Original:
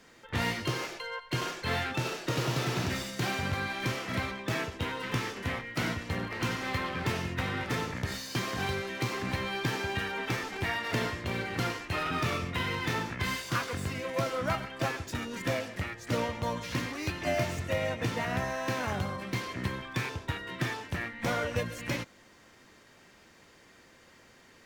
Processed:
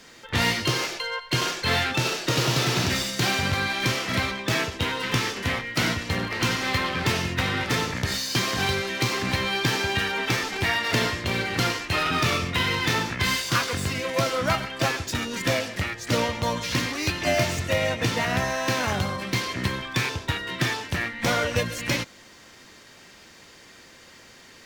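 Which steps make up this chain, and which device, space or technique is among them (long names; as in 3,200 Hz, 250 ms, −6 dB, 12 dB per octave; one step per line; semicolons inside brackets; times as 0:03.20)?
presence and air boost (parametric band 4,500 Hz +6 dB 1.8 octaves; high-shelf EQ 9,800 Hz +4.5 dB)
level +6 dB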